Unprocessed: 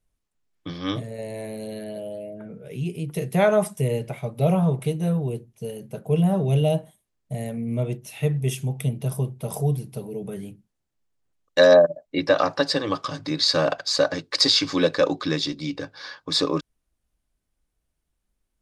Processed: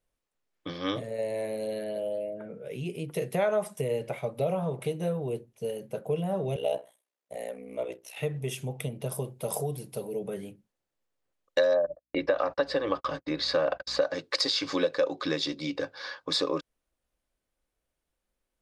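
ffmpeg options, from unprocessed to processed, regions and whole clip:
ffmpeg -i in.wav -filter_complex "[0:a]asettb=1/sr,asplit=3[link_01][link_02][link_03];[link_01]atrim=end=6.564[link_04];[link_02]atrim=start=6.56:end=8.17,asetpts=PTS-STARTPTS,afade=type=in:duration=0.004:curve=qsin,afade=type=out:start_time=1.606:duration=0.004:curve=qsin,highpass=410,aeval=exprs='val(0)*sin(2*PI*31*n/s)':channel_layout=same[link_05];[link_03]atrim=start=8.166[link_06];[link_04][link_05]acrossfade=duration=0.004:curve1=hsin:curve2=qsin[link_07];[link_07][link_06]acrossfade=duration=0.004:curve1=qsin:curve2=hsin,asettb=1/sr,asplit=3[link_08][link_09][link_10];[link_08]atrim=end=9.104[link_11];[link_09]atrim=start=9.1:end=10.19,asetpts=PTS-STARTPTS,afade=type=in:duration=0.004:curve=qsin,afade=type=out:start_time=1.086:duration=0.004:curve=qsin,bass=frequency=250:gain=-1,treble=frequency=4000:gain=6,bandreject=frequency=5900:width=21[link_12];[link_10]atrim=start=10.186[link_13];[link_11][link_12]acrossfade=duration=0.004:curve1=hsin:curve2=qsin[link_14];[link_14][link_13]acrossfade=duration=0.004:curve1=qsin:curve2=hsin,asettb=1/sr,asplit=3[link_15][link_16][link_17];[link_15]atrim=end=11.754[link_18];[link_16]atrim=start=11.75:end=14.02,asetpts=PTS-STARTPTS,afade=type=in:duration=0.004:curve=qsin,afade=type=out:start_time=2.266:duration=0.004:curve=qsin,aeval=exprs='val(0)+0.00631*(sin(2*PI*60*n/s)+sin(2*PI*2*60*n/s)/2+sin(2*PI*3*60*n/s)/3+sin(2*PI*4*60*n/s)/4+sin(2*PI*5*60*n/s)/5)':channel_layout=same,agate=range=-44dB:threshold=-35dB:ratio=16:release=100:detection=peak,bass=frequency=250:gain=-1,treble=frequency=4000:gain=-11[link_19];[link_17]atrim=start=14.016[link_20];[link_18][link_19]acrossfade=duration=0.004:curve1=hsin:curve2=qsin[link_21];[link_21][link_20]acrossfade=duration=0.004:curve1=qsin:curve2=hsin,equalizer=frequency=530:width=6.2:gain=6.5,acompressor=threshold=-22dB:ratio=6,bass=frequency=250:gain=-9,treble=frequency=4000:gain=-4" out.wav

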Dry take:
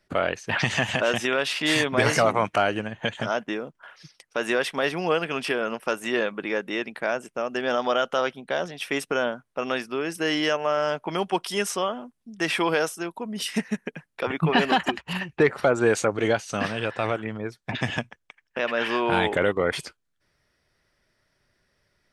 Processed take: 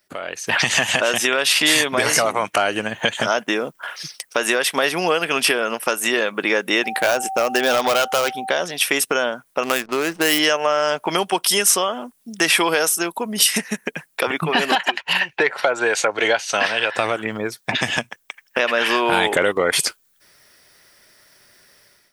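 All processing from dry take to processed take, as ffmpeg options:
ffmpeg -i in.wav -filter_complex "[0:a]asettb=1/sr,asplit=3[link_01][link_02][link_03];[link_01]atrim=end=6.844[link_04];[link_02]atrim=start=6.84:end=8.5,asetpts=PTS-STARTPTS,afade=type=in:duration=0.004:curve=qsin,afade=type=out:start_time=1.656:duration=0.004:curve=qsin,asoftclip=type=hard:threshold=-21.5dB,aeval=exprs='val(0)+0.0126*sin(2*PI*770*n/s)':channel_layout=same[link_05];[link_03]atrim=start=8.496[link_06];[link_04][link_05]acrossfade=duration=0.004:curve1=hsin:curve2=qsin[link_07];[link_07][link_06]acrossfade=duration=0.004:curve1=qsin:curve2=hsin,asettb=1/sr,asplit=3[link_08][link_09][link_10];[link_08]atrim=end=9.634[link_11];[link_09]atrim=start=9.63:end=10.39,asetpts=PTS-STARTPTS,afade=type=in:duration=0.004:curve=qsin,afade=type=out:start_time=0.756:duration=0.004:curve=qsin,lowpass=frequency=9200:width=0.5412,lowpass=frequency=9200:width=1.3066,acrusher=bits=8:dc=4:mix=0:aa=0.000001,adynamicsmooth=sensitivity=5:basefreq=940[link_12];[link_10]atrim=start=10.386[link_13];[link_11][link_12]acrossfade=duration=0.004:curve1=hsin:curve2=qsin[link_14];[link_14][link_13]acrossfade=duration=0.004:curve1=qsin:curve2=hsin,asettb=1/sr,asplit=3[link_15][link_16][link_17];[link_15]atrim=end=14.754[link_18];[link_16]atrim=start=14.75:end=16.95,asetpts=PTS-STARTPTS,afade=type=in:duration=0.004:curve=qsin,afade=type=out:start_time=2.196:duration=0.004:curve=qsin,acrossover=split=500 5000:gain=0.224 1 0.158[link_19][link_20][link_21];[link_19][link_20][link_21]amix=inputs=3:normalize=0,bandreject=frequency=1200:width=7[link_22];[link_17]atrim=start=16.946[link_23];[link_18][link_22]acrossfade=duration=0.004:curve1=hsin:curve2=qsin[link_24];[link_24][link_23]acrossfade=duration=0.004:curve1=qsin:curve2=hsin,acompressor=threshold=-29dB:ratio=3,aemphasis=mode=production:type=bsi,dynaudnorm=framelen=160:gausssize=5:maxgain=15dB" out.wav

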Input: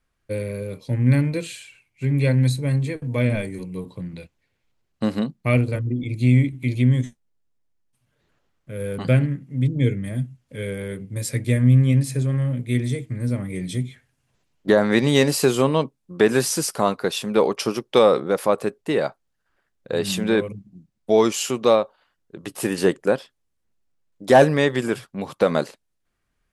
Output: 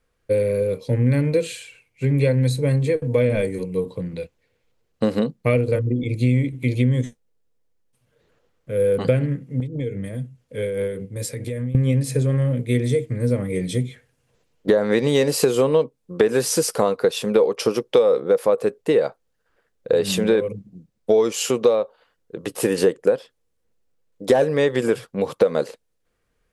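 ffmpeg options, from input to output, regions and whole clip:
ffmpeg -i in.wav -filter_complex "[0:a]asettb=1/sr,asplit=3[link_01][link_02][link_03];[link_01]atrim=end=9.604[link_04];[link_02]atrim=start=9.6:end=11.75,asetpts=PTS-STARTPTS,afade=type=in:duration=0.004:curve=qsin,afade=type=out:start_time=2.146:duration=0.004:curve=qsin,acompressor=threshold=-26dB:ratio=5:attack=3.2:release=140:knee=1:detection=peak,tremolo=f=4.9:d=0.46[link_05];[link_03]atrim=start=11.746[link_06];[link_04][link_05]acrossfade=duration=0.004:curve1=hsin:curve2=qsin[link_07];[link_07][link_06]acrossfade=duration=0.004:curve1=qsin:curve2=hsin,equalizer=frequency=480:width=4.2:gain=13,acompressor=threshold=-17dB:ratio=5,volume=2.5dB" out.wav

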